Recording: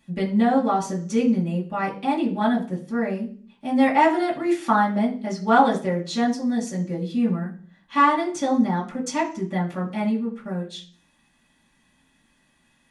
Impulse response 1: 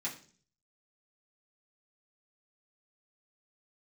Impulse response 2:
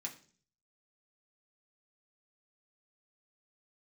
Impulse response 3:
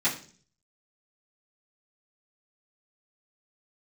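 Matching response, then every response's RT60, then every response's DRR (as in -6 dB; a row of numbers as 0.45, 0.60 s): 1; 0.45, 0.45, 0.45 s; -7.5, -1.5, -13.5 dB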